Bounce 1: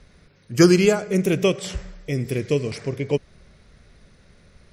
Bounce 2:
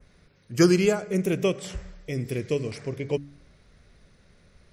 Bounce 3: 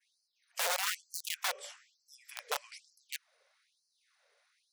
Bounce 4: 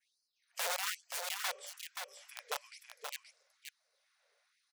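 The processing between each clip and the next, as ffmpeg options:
ffmpeg -i in.wav -af "bandreject=frequency=71.34:width_type=h:width=4,bandreject=frequency=142.68:width_type=h:width=4,bandreject=frequency=214.02:width_type=h:width=4,bandreject=frequency=285.36:width_type=h:width=4,adynamicequalizer=threshold=0.00794:dfrequency=4100:dqfactor=1:tfrequency=4100:tqfactor=1:attack=5:release=100:ratio=0.375:range=2:mode=cutabove:tftype=bell,volume=-4.5dB" out.wav
ffmpeg -i in.wav -af "aeval=exprs='(mod(8.41*val(0)+1,2)-1)/8.41':channel_layout=same,afftfilt=real='re*gte(b*sr/1024,420*pow(4200/420,0.5+0.5*sin(2*PI*1.1*pts/sr)))':imag='im*gte(b*sr/1024,420*pow(4200/420,0.5+0.5*sin(2*PI*1.1*pts/sr)))':win_size=1024:overlap=0.75,volume=-7.5dB" out.wav
ffmpeg -i in.wav -af "aecho=1:1:527:0.501,volume=-3.5dB" out.wav

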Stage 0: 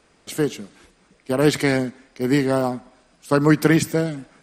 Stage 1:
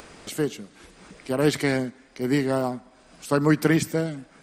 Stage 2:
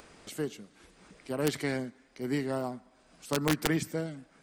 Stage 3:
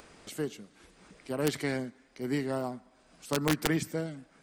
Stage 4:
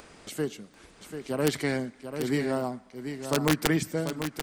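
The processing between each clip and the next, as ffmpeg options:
ffmpeg -i in.wav -af "acompressor=mode=upward:threshold=-28dB:ratio=2.5,volume=-4dB" out.wav
ffmpeg -i in.wav -af "aeval=exprs='(mod(2.99*val(0)+1,2)-1)/2.99':channel_layout=same,volume=-8.5dB" out.wav
ffmpeg -i in.wav -af anull out.wav
ffmpeg -i in.wav -af "aecho=1:1:740:0.376,volume=3.5dB" out.wav

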